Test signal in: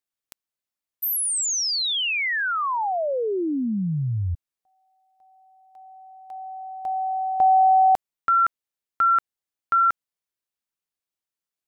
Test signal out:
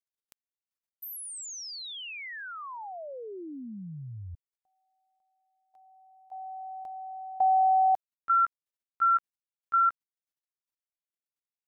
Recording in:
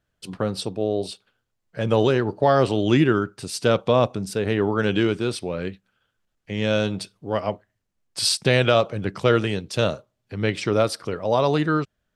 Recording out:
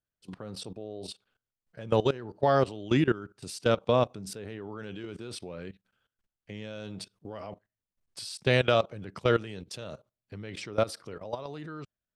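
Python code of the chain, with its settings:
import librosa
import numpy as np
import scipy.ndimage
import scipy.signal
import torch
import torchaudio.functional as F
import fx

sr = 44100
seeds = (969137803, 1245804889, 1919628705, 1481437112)

y = fx.level_steps(x, sr, step_db=18)
y = y * 10.0 ** (-4.0 / 20.0)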